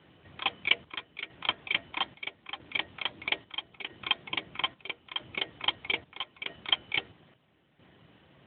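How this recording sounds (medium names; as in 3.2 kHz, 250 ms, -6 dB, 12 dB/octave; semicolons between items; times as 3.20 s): chopped level 0.77 Hz, depth 65%, duty 65%; AMR-NB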